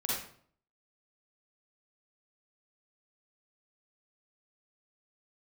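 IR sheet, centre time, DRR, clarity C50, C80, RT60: 63 ms, -6.5 dB, -2.5 dB, 4.0 dB, 0.55 s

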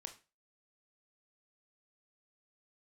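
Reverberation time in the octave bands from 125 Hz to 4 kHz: 0.30 s, 0.30 s, 0.30 s, 0.30 s, 0.30 s, 0.30 s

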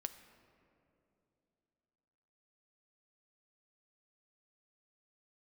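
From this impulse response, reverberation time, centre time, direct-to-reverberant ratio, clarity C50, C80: 2.9 s, 16 ms, 8.5 dB, 11.5 dB, 12.5 dB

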